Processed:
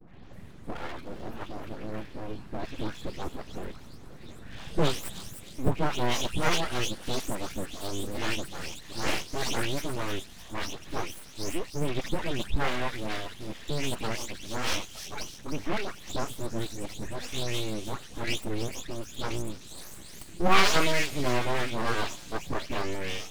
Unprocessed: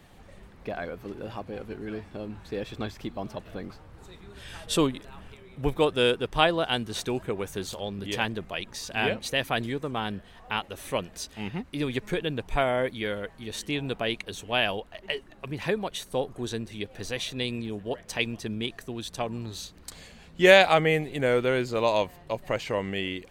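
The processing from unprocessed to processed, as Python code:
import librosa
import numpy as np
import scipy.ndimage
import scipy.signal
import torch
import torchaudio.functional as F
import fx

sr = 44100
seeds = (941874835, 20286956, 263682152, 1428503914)

p1 = fx.spec_delay(x, sr, highs='late', ms=331)
p2 = fx.low_shelf_res(p1, sr, hz=250.0, db=6.5, q=1.5)
p3 = np.abs(p2)
y = p3 + fx.echo_wet_highpass(p3, sr, ms=305, feedback_pct=49, hz=5000.0, wet_db=-5.0, dry=0)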